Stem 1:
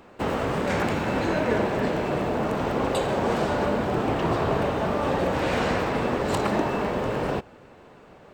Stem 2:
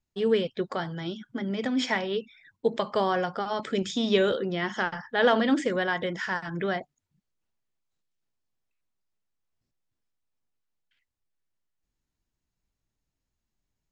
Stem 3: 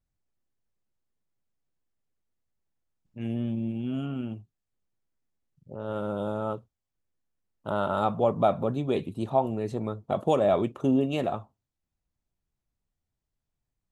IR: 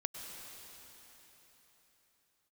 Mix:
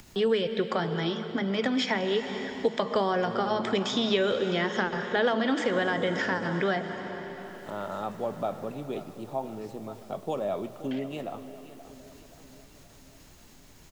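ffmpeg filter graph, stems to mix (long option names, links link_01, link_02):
-filter_complex "[0:a]acompressor=threshold=-34dB:ratio=6,adelay=1350,volume=-14.5dB[link_01];[1:a]acompressor=mode=upward:threshold=-34dB:ratio=2.5,volume=2.5dB,asplit=2[link_02][link_03];[link_03]volume=-4dB[link_04];[2:a]bandreject=frequency=60:width_type=h:width=6,bandreject=frequency=120:width_type=h:width=6,volume=-10dB,asplit=3[link_05][link_06][link_07];[link_06]volume=-8.5dB[link_08];[link_07]volume=-13dB[link_09];[3:a]atrim=start_sample=2205[link_10];[link_04][link_08]amix=inputs=2:normalize=0[link_11];[link_11][link_10]afir=irnorm=-1:irlink=0[link_12];[link_09]aecho=0:1:526|1052|1578|2104|2630|3156|3682|4208:1|0.54|0.292|0.157|0.085|0.0459|0.0248|0.0134[link_13];[link_01][link_02][link_05][link_12][link_13]amix=inputs=5:normalize=0,acrossover=split=120|540|5900[link_14][link_15][link_16][link_17];[link_14]acompressor=threshold=-55dB:ratio=4[link_18];[link_15]acompressor=threshold=-28dB:ratio=4[link_19];[link_16]acompressor=threshold=-28dB:ratio=4[link_20];[link_17]acompressor=threshold=-55dB:ratio=4[link_21];[link_18][link_19][link_20][link_21]amix=inputs=4:normalize=0"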